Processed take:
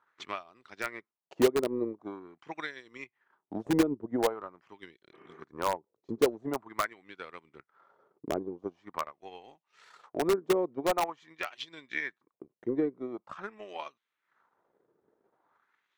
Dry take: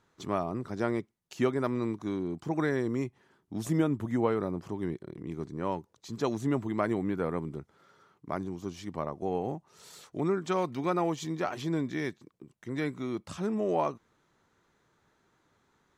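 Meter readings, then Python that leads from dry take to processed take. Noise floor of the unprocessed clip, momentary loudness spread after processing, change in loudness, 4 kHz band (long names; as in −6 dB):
−72 dBFS, 20 LU, −0.5 dB, +4.0 dB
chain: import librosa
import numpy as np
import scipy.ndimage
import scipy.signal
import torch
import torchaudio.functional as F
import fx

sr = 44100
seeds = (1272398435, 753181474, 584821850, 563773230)

p1 = fx.spec_repair(x, sr, seeds[0], start_s=5.15, length_s=0.24, low_hz=310.0, high_hz=3100.0, source='after')
p2 = fx.high_shelf(p1, sr, hz=4100.0, db=-4.0)
p3 = fx.wah_lfo(p2, sr, hz=0.45, low_hz=400.0, high_hz=3300.0, q=2.0)
p4 = fx.transient(p3, sr, attack_db=9, sustain_db=-9)
p5 = (np.mod(10.0 ** (22.5 / 20.0) * p4 + 1.0, 2.0) - 1.0) / 10.0 ** (22.5 / 20.0)
y = p4 + (p5 * librosa.db_to_amplitude(-4.5))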